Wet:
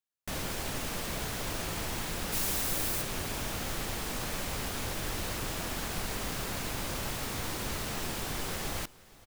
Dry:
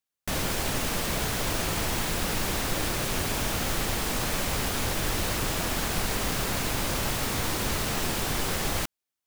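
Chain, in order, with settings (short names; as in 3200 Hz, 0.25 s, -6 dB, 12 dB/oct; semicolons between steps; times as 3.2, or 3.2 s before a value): 2.32–3.01 high shelf 5300 Hz -> 8700 Hz +11.5 dB; on a send: echo 0.471 s -21 dB; on the sum: gain -7 dB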